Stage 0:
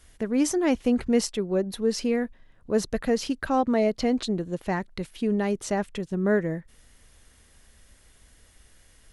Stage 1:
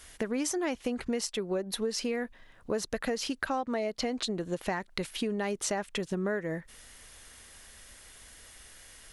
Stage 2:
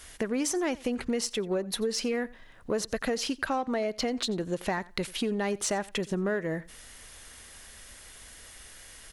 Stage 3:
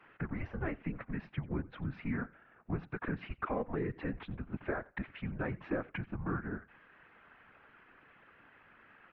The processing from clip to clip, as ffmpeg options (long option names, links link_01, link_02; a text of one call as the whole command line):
ffmpeg -i in.wav -af "lowshelf=frequency=400:gain=-11,acompressor=threshold=-36dB:ratio=12,volume=8dB" out.wav
ffmpeg -i in.wav -filter_complex "[0:a]asplit=2[link_01][link_02];[link_02]asoftclip=type=tanh:threshold=-30.5dB,volume=-7dB[link_03];[link_01][link_03]amix=inputs=2:normalize=0,aecho=1:1:89|178:0.0841|0.0126" out.wav
ffmpeg -i in.wav -af "afftfilt=real='hypot(re,im)*cos(2*PI*random(0))':imag='hypot(re,im)*sin(2*PI*random(1))':win_size=512:overlap=0.75,highpass=frequency=340:width_type=q:width=0.5412,highpass=frequency=340:width_type=q:width=1.307,lowpass=frequency=2600:width_type=q:width=0.5176,lowpass=frequency=2600:width_type=q:width=0.7071,lowpass=frequency=2600:width_type=q:width=1.932,afreqshift=-280,volume=1dB" out.wav